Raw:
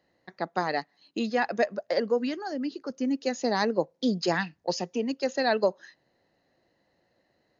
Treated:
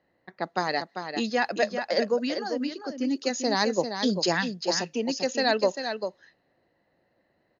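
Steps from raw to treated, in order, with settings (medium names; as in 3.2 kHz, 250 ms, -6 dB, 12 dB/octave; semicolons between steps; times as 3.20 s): treble shelf 3.7 kHz +10 dB; delay 395 ms -7.5 dB; level-controlled noise filter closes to 2.1 kHz, open at -22.5 dBFS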